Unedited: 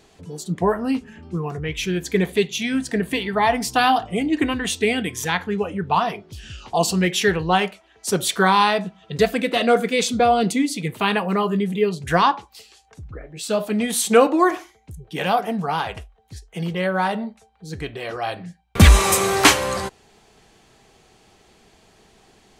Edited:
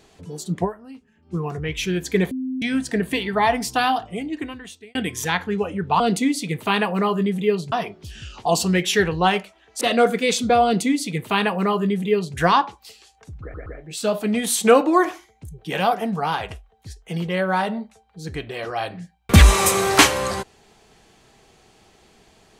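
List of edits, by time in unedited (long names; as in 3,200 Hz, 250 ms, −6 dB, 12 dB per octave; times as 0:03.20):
0:00.64–0:01.34: duck −18.5 dB, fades 0.33 s exponential
0:02.31–0:02.62: beep over 259 Hz −23.5 dBFS
0:03.42–0:04.95: fade out
0:08.09–0:09.51: remove
0:10.34–0:12.06: duplicate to 0:06.00
0:13.12: stutter 0.12 s, 3 plays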